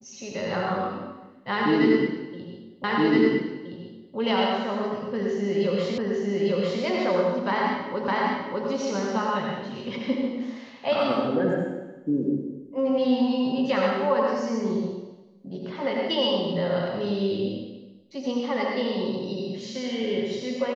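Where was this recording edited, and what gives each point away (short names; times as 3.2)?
2.84 repeat of the last 1.32 s
5.98 repeat of the last 0.85 s
8.08 repeat of the last 0.6 s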